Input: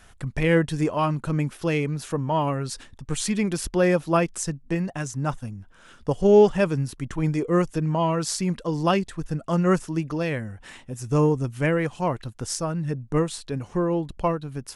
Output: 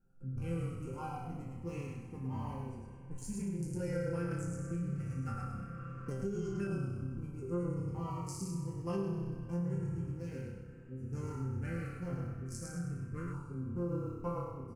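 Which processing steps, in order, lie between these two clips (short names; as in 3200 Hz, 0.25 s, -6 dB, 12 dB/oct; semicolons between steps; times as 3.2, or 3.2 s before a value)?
Wiener smoothing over 41 samples; high shelf 4600 Hz +7.5 dB; fixed phaser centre 1500 Hz, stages 4; resonator bank C3 sus4, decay 0.84 s; small resonant body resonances 250/1400 Hz, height 13 dB, ringing for 25 ms; frequency-shifting echo 0.107 s, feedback 31%, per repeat -33 Hz, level -3.5 dB; compressor, threshold -36 dBFS, peak gain reduction 9 dB; EQ curve 140 Hz 0 dB, 290 Hz -6 dB, 530 Hz +11 dB, 1900 Hz -4 dB, 3200 Hz +4 dB; reverb RT60 5.7 s, pre-delay 54 ms, DRR 11 dB; LFO notch saw down 0.15 Hz 840–1900 Hz; 4.31–6.52 three-band squash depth 70%; gain +5 dB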